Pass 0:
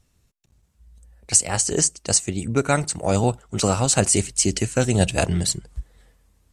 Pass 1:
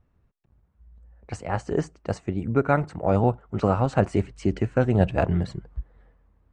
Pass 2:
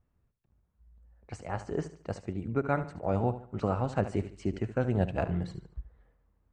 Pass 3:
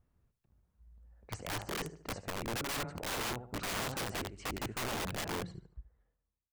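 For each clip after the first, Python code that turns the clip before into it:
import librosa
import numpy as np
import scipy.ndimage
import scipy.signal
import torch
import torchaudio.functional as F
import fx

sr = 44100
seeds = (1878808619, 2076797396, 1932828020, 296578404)

y1 = scipy.signal.sosfilt(scipy.signal.cheby1(2, 1.0, 1300.0, 'lowpass', fs=sr, output='sos'), x)
y2 = fx.echo_feedback(y1, sr, ms=73, feedback_pct=36, wet_db=-13.0)
y2 = y2 * 10.0 ** (-8.0 / 20.0)
y3 = fx.fade_out_tail(y2, sr, length_s=1.94)
y3 = (np.mod(10.0 ** (31.5 / 20.0) * y3 + 1.0, 2.0) - 1.0) / 10.0 ** (31.5 / 20.0)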